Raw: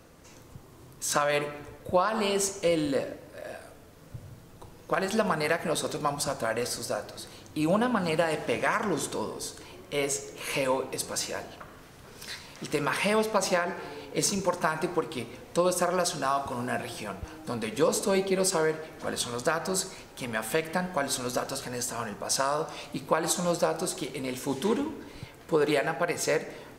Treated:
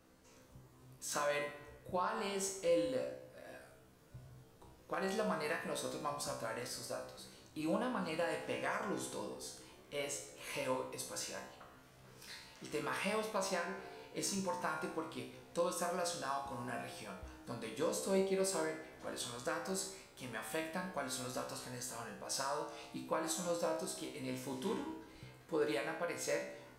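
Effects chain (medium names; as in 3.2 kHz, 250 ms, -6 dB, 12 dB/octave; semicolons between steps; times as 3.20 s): feedback comb 64 Hz, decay 0.53 s, harmonics all, mix 90%; trim -2 dB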